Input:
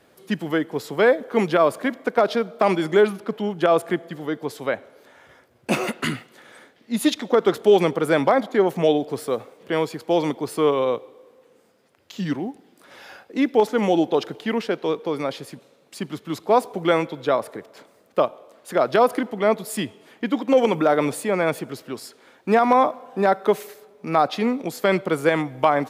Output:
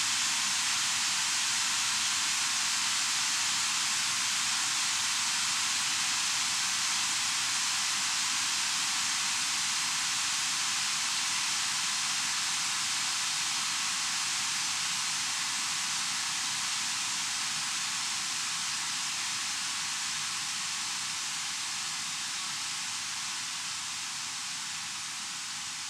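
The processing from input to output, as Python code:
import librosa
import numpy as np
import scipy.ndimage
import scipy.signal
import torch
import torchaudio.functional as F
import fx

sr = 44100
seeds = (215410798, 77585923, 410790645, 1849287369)

y = fx.spec_flatten(x, sr, power=0.19)
y = scipy.signal.sosfilt(scipy.signal.cheby2(4, 40, [210.0, 1100.0], 'bandstop', fs=sr, output='sos'), y)
y = fx.noise_vocoder(y, sr, seeds[0], bands=4)
y = fx.paulstretch(y, sr, seeds[1], factor=45.0, window_s=1.0, from_s=14.9)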